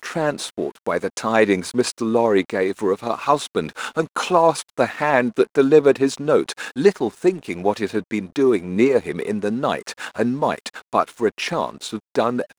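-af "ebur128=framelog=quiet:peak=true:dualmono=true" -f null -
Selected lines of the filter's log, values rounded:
Integrated loudness:
  I:         -17.5 LUFS
  Threshold: -27.6 LUFS
Loudness range:
  LRA:         3.7 LU
  Threshold: -37.2 LUFS
  LRA low:   -19.0 LUFS
  LRA high:  -15.3 LUFS
True peak:
  Peak:       -1.5 dBFS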